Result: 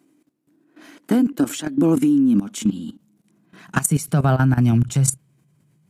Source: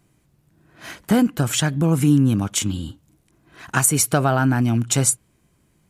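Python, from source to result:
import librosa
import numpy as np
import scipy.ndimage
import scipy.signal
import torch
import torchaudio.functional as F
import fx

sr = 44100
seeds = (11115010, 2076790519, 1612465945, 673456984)

y = fx.filter_sweep_highpass(x, sr, from_hz=280.0, to_hz=140.0, start_s=1.59, end_s=4.86, q=6.6)
y = fx.level_steps(y, sr, step_db=15)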